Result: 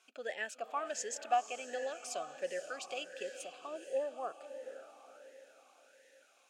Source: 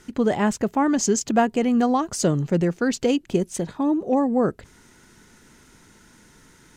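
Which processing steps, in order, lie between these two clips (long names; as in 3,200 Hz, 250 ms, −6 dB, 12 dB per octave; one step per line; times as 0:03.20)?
first difference
feedback delay with all-pass diffusion 500 ms, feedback 47%, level −10 dB
wrong playback speed 24 fps film run at 25 fps
formant filter swept between two vowels a-e 1.4 Hz
level +13.5 dB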